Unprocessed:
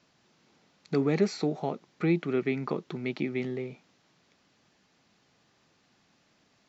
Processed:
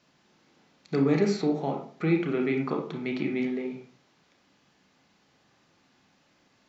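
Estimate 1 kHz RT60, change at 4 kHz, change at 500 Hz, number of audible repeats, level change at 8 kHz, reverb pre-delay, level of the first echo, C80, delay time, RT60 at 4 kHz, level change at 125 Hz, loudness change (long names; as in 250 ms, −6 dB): 0.45 s, +1.0 dB, +1.5 dB, no echo audible, can't be measured, 26 ms, no echo audible, 11.5 dB, no echo audible, 0.35 s, +1.5 dB, +2.5 dB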